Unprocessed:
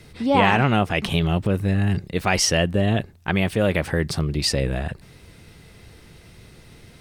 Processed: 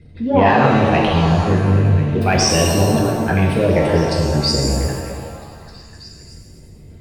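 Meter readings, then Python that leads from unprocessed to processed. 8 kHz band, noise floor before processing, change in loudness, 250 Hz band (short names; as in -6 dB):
+4.5 dB, -49 dBFS, +5.5 dB, +6.0 dB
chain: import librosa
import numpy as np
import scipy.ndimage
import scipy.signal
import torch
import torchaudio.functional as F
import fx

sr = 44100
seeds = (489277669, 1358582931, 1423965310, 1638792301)

p1 = fx.envelope_sharpen(x, sr, power=2.0)
p2 = 10.0 ** (-7.0 / 20.0) * np.tanh(p1 / 10.0 ** (-7.0 / 20.0))
p3 = p2 + fx.echo_stepped(p2, sr, ms=261, hz=400.0, octaves=0.7, feedback_pct=70, wet_db=-4.5, dry=0)
p4 = fx.rev_shimmer(p3, sr, seeds[0], rt60_s=1.5, semitones=7, shimmer_db=-8, drr_db=-1.0)
y = p4 * librosa.db_to_amplitude(1.5)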